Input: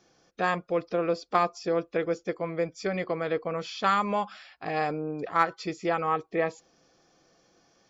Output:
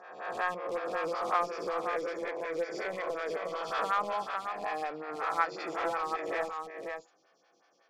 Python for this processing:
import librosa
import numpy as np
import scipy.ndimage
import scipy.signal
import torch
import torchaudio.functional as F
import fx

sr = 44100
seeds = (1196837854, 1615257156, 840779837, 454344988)

p1 = fx.spec_swells(x, sr, rise_s=1.04)
p2 = fx.highpass(p1, sr, hz=1300.0, slope=6)
p3 = fx.high_shelf(p2, sr, hz=3500.0, db=-6.0)
p4 = (np.mod(10.0 ** (29.0 / 20.0) * p3 + 1.0, 2.0) - 1.0) / 10.0 ** (29.0 / 20.0)
p5 = p3 + (p4 * 10.0 ** (-9.0 / 20.0))
p6 = fx.air_absorb(p5, sr, metres=66.0)
p7 = p6 + fx.echo_single(p6, sr, ms=507, db=-6.0, dry=0)
y = fx.stagger_phaser(p7, sr, hz=5.4)